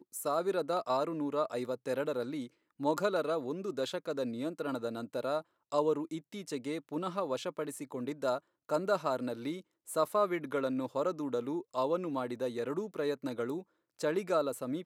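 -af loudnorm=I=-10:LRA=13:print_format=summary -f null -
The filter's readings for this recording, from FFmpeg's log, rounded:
Input Integrated:    -34.9 LUFS
Input True Peak:     -16.3 dBTP
Input LRA:             2.2 LU
Input Threshold:     -45.0 LUFS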